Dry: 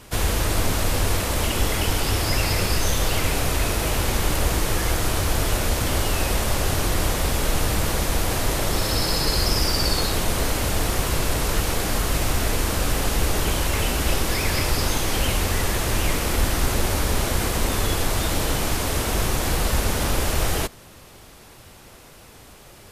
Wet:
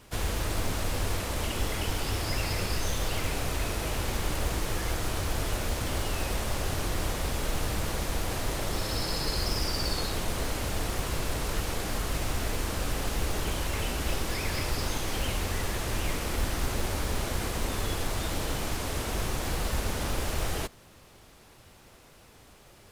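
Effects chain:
high-shelf EQ 11,000 Hz −6 dB
log-companded quantiser 6 bits
level −8 dB

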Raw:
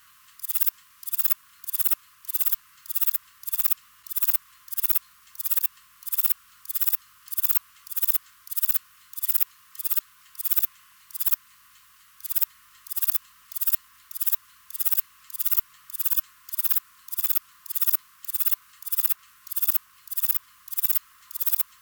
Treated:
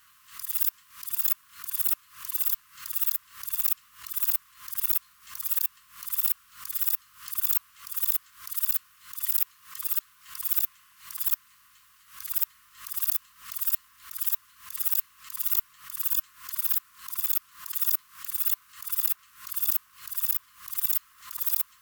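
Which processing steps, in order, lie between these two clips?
background raised ahead of every attack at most 130 dB per second
level −3.5 dB

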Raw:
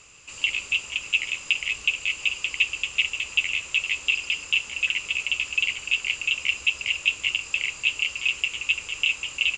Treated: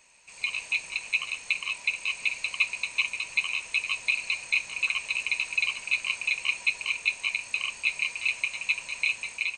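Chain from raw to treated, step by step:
frequency inversion band by band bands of 1,000 Hz
automatic gain control gain up to 7 dB
level −8.5 dB

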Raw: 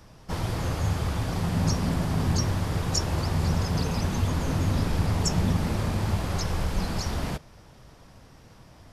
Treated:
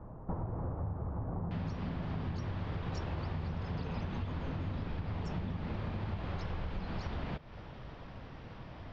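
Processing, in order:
low-pass filter 1,100 Hz 24 dB per octave, from 0:01.51 3,600 Hz
downward compressor 16 to 1, threshold −37 dBFS, peak gain reduction 19.5 dB
level +3.5 dB

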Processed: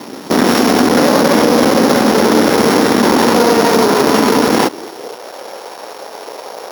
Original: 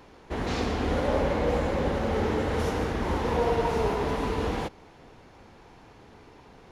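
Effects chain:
samples sorted by size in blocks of 8 samples
dynamic equaliser 1,400 Hz, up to +4 dB, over −40 dBFS, Q 0.78
half-wave rectification
high-pass filter sweep 240 Hz → 540 Hz, 0:04.51–0:05.26
boost into a limiter +26.5 dB
level −1 dB

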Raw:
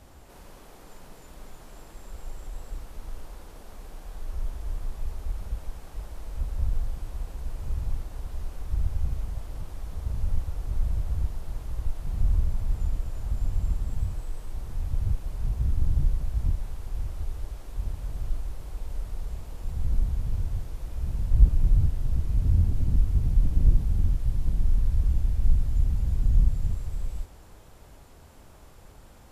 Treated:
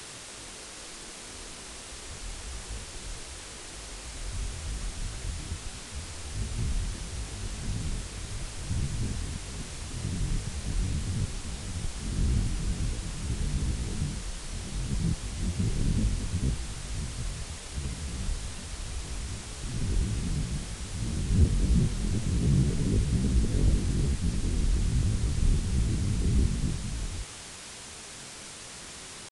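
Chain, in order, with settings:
one-sided soft clipper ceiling −12 dBFS
octave-band graphic EQ 125/250/1,000 Hz +6/+9/−6 dB
pitch shifter +8.5 semitones
bit-depth reduction 6 bits, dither triangular
downsampling to 22,050 Hz
level −4.5 dB

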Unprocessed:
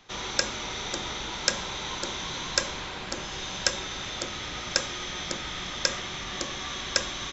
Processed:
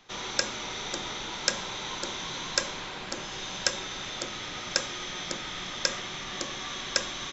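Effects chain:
parametric band 62 Hz −14 dB 0.72 octaves
level −1.5 dB

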